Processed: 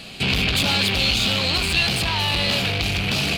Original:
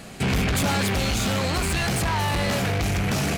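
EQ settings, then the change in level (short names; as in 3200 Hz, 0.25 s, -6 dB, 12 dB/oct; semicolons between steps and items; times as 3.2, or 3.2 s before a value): band shelf 3400 Hz +12.5 dB 1.2 oct; -1.5 dB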